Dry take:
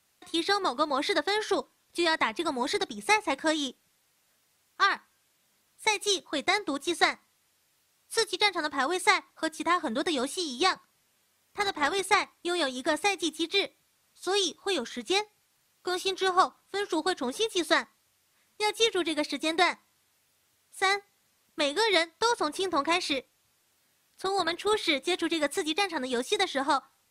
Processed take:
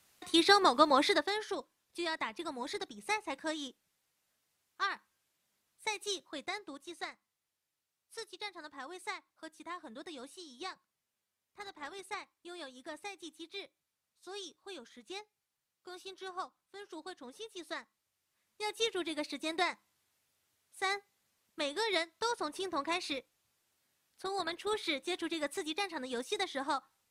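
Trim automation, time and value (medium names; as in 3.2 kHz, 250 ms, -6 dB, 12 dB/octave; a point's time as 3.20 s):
0.96 s +2 dB
1.47 s -10.5 dB
6.19 s -10.5 dB
6.95 s -18 dB
17.66 s -18 dB
18.83 s -8.5 dB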